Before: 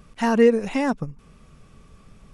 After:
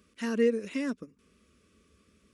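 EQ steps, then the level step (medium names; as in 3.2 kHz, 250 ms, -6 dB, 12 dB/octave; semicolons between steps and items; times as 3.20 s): high-pass 71 Hz 24 dB/octave; static phaser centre 330 Hz, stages 4; -7.0 dB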